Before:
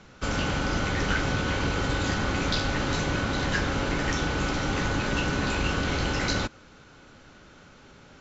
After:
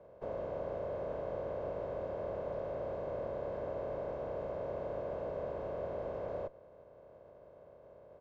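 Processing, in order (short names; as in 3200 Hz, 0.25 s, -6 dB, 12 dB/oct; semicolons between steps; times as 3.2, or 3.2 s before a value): spectral contrast lowered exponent 0.21; HPF 53 Hz; comb 1.9 ms, depth 51%; tube stage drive 33 dB, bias 0.45; synth low-pass 600 Hz, resonance Q 3.7; gain -3 dB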